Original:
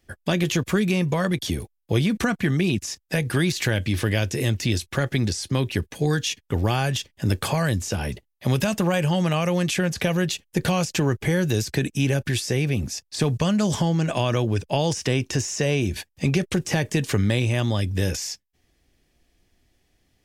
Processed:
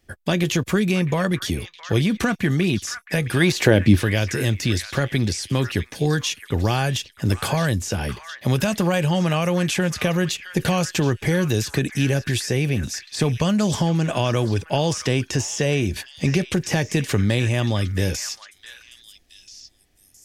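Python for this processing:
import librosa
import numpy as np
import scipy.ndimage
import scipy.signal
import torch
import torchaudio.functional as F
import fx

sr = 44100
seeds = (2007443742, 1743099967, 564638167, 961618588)

y = fx.peak_eq(x, sr, hz=fx.line((3.4, 1200.0), (3.95, 180.0)), db=11.5, octaves=2.5, at=(3.4, 3.95), fade=0.02)
y = fx.echo_stepped(y, sr, ms=666, hz=1600.0, octaves=1.4, feedback_pct=70, wet_db=-8.0)
y = y * librosa.db_to_amplitude(1.5)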